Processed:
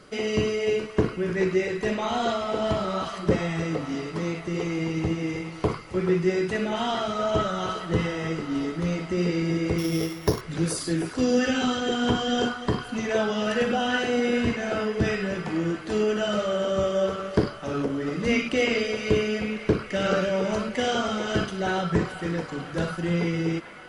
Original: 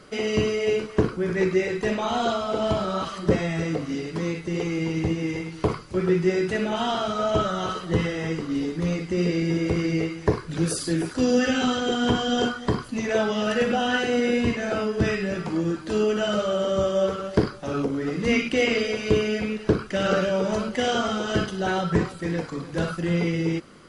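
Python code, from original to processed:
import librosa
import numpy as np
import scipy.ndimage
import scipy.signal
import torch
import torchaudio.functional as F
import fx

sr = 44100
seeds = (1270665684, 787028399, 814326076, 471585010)

y = fx.sample_sort(x, sr, block=8, at=(9.78, 10.41))
y = fx.echo_wet_bandpass(y, sr, ms=429, feedback_pct=79, hz=1500.0, wet_db=-12.5)
y = y * 10.0 ** (-1.5 / 20.0)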